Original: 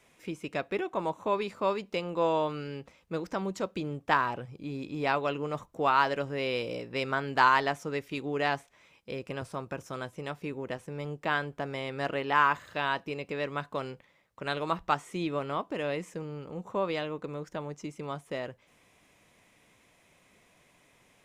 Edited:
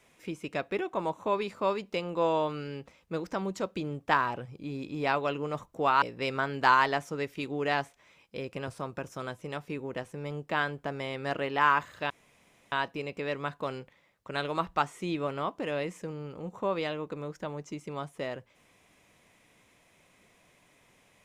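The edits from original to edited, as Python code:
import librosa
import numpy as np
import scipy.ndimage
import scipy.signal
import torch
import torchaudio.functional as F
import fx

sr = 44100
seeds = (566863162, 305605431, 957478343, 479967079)

y = fx.edit(x, sr, fx.cut(start_s=6.02, length_s=0.74),
    fx.insert_room_tone(at_s=12.84, length_s=0.62), tone=tone)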